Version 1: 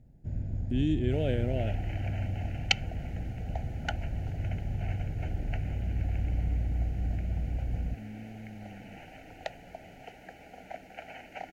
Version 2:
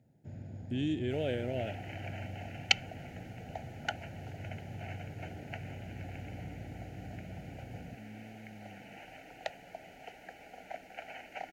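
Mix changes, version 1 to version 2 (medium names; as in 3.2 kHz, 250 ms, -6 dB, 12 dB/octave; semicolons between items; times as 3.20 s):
first sound: add high-pass 92 Hz 24 dB/octave; master: add bass shelf 280 Hz -9 dB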